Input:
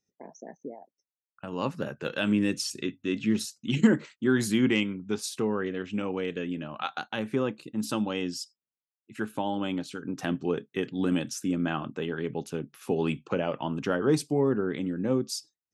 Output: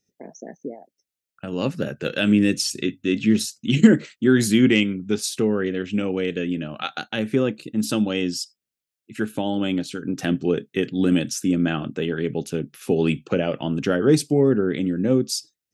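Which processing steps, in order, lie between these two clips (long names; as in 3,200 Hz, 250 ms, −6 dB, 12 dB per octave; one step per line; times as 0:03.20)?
parametric band 990 Hz −12.5 dB 0.7 octaves
level +8 dB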